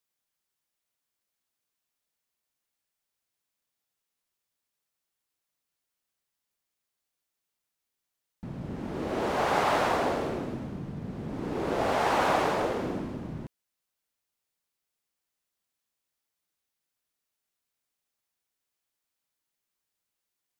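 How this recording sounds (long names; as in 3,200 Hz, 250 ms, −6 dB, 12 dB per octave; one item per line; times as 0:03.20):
background noise floor −85 dBFS
spectral slope −4.0 dB per octave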